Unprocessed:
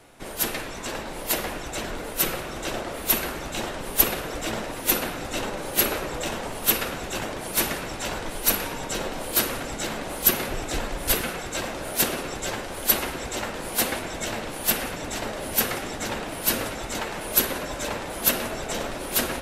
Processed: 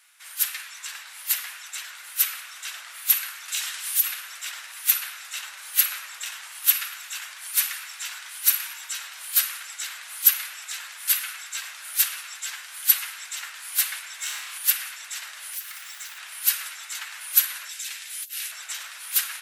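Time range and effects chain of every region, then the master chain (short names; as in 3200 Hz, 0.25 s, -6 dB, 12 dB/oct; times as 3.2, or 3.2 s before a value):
3.48–4.04 high shelf 2200 Hz +10 dB + compressor 4:1, threshold -21 dBFS + hard clip -14.5 dBFS
6.35–9.1 HPF 440 Hz + feedback echo 78 ms, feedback 59%, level -20.5 dB
14.16–14.58 hard clip -22.5 dBFS + flutter echo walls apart 4.9 m, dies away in 0.56 s
15.53–16.18 HPF 440 Hz 24 dB/oct + companded quantiser 4-bit + compressor 12:1, threshold -31 dBFS
17.69–18.52 HPF 830 Hz + bell 1100 Hz -14 dB 1.4 oct + negative-ratio compressor -36 dBFS
whole clip: HPF 1400 Hz 24 dB/oct; high shelf 7800 Hz +6.5 dB; gain -2 dB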